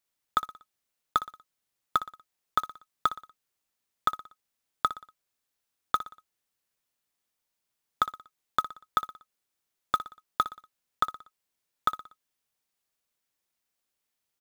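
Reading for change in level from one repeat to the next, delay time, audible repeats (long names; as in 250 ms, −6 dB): −7.0 dB, 60 ms, 4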